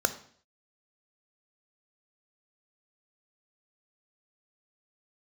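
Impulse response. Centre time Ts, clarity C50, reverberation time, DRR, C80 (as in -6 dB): 7 ms, 13.5 dB, 0.55 s, 10.5 dB, 17.0 dB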